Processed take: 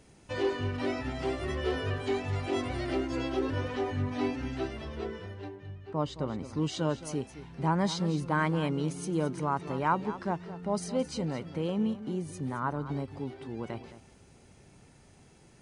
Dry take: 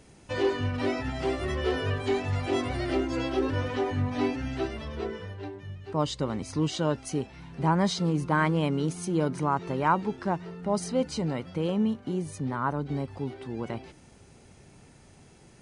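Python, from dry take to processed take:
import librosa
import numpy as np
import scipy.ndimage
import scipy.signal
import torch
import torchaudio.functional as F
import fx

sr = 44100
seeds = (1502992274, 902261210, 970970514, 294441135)

y = fx.high_shelf(x, sr, hz=fx.line((5.48, 5000.0), (6.56, 3000.0)), db=-11.5, at=(5.48, 6.56), fade=0.02)
y = y + 10.0 ** (-14.0 / 20.0) * np.pad(y, (int(217 * sr / 1000.0), 0))[:len(y)]
y = y * 10.0 ** (-3.5 / 20.0)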